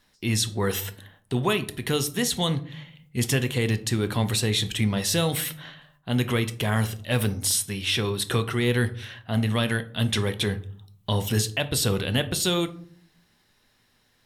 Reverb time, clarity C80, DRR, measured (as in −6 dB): 0.55 s, 20.5 dB, 10.0 dB